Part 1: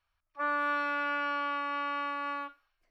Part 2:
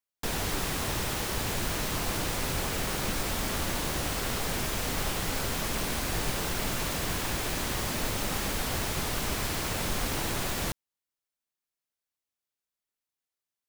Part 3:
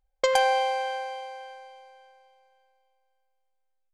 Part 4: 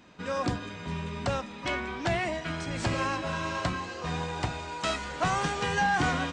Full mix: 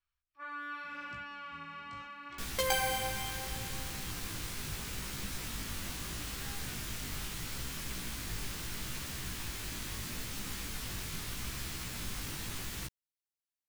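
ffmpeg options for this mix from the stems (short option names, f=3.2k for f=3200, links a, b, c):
-filter_complex "[0:a]volume=-4.5dB[a];[1:a]adelay=2150,volume=-4.5dB[b];[2:a]acrusher=samples=4:mix=1:aa=0.000001,adelay=2350,volume=0.5dB[c];[3:a]adelay=650,volume=-19dB[d];[a][b][c][d]amix=inputs=4:normalize=0,equalizer=f=620:t=o:w=1.7:g=-11.5,flanger=delay=15:depth=5.1:speed=0.77"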